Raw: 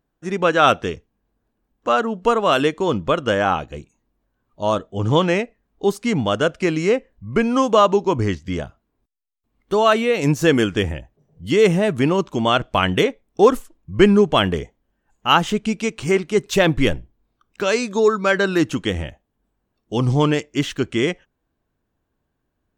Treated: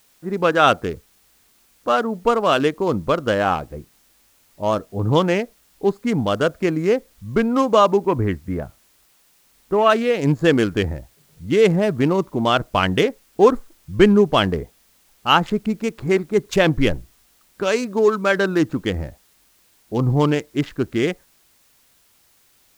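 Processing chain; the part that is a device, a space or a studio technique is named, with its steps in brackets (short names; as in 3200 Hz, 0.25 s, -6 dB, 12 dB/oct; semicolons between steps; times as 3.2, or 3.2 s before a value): Wiener smoothing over 15 samples; 8.03–9.9 resonant high shelf 3300 Hz -9 dB, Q 1.5; plain cassette with noise reduction switched in (mismatched tape noise reduction decoder only; wow and flutter 22 cents; white noise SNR 38 dB)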